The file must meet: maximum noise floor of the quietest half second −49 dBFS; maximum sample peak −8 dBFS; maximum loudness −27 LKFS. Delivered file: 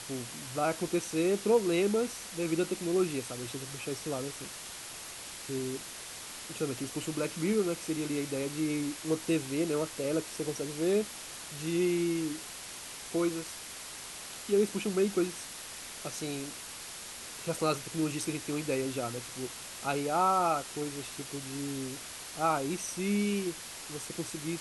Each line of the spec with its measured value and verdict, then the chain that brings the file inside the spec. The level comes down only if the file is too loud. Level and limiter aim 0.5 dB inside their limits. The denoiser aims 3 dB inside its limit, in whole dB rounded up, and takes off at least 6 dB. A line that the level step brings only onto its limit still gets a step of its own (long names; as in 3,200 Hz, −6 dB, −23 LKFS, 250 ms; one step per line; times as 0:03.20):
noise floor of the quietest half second −44 dBFS: out of spec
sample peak −14.0 dBFS: in spec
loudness −33.0 LKFS: in spec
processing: broadband denoise 8 dB, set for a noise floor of −44 dBFS